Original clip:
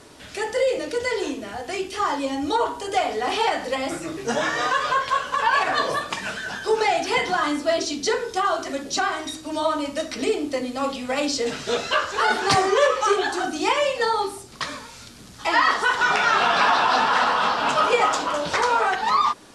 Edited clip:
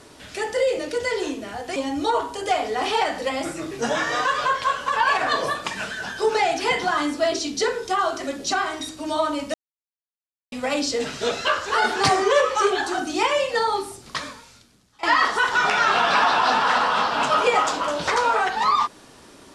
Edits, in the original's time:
0:01.76–0:02.22: remove
0:10.00–0:10.98: silence
0:14.65–0:15.49: fade out quadratic, to −20.5 dB

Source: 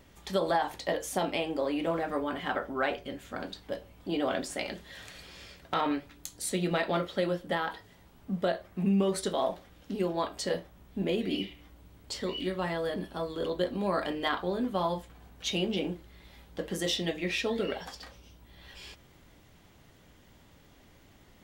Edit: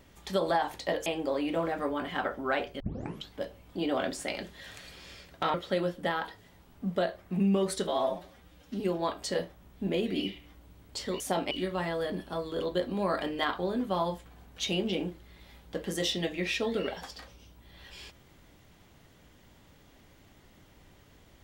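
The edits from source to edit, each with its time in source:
0:01.06–0:01.37: move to 0:12.35
0:03.11: tape start 0.50 s
0:05.85–0:07.00: remove
0:09.33–0:09.95: time-stretch 1.5×

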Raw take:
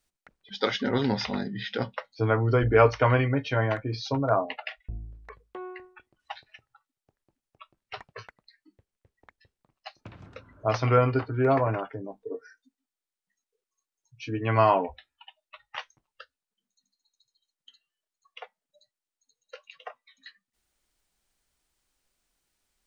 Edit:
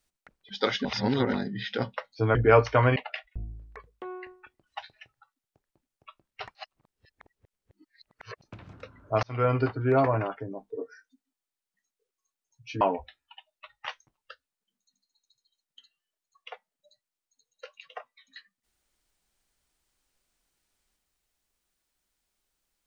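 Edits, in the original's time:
0:00.85–0:01.33: reverse
0:02.35–0:02.62: remove
0:03.23–0:04.49: remove
0:08.08–0:09.95: reverse
0:10.76–0:11.11: fade in
0:14.34–0:14.71: remove

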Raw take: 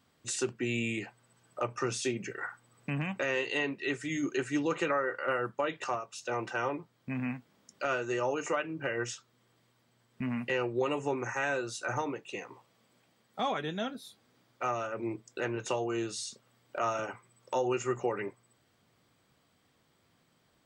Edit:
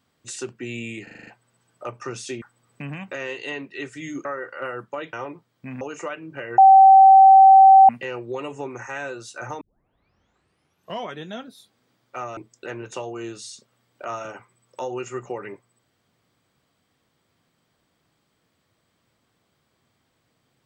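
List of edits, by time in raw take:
0:01.03: stutter 0.04 s, 7 plays
0:02.18–0:02.50: remove
0:04.33–0:04.91: remove
0:05.79–0:06.57: remove
0:07.25–0:08.28: remove
0:09.05–0:10.36: beep over 772 Hz −6.5 dBFS
0:12.08: tape start 1.55 s
0:14.84–0:15.11: remove

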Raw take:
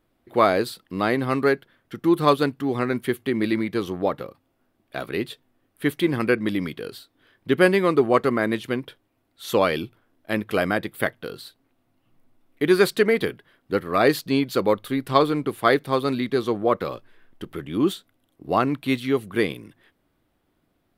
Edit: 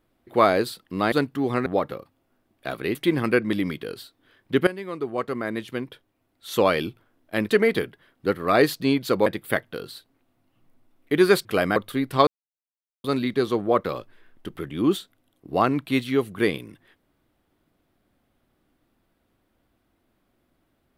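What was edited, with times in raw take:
0:01.12–0:02.37: remove
0:02.91–0:03.95: remove
0:05.24–0:05.91: remove
0:07.63–0:09.53: fade in, from −18.5 dB
0:10.45–0:10.76: swap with 0:12.95–0:14.72
0:15.23–0:16.00: silence

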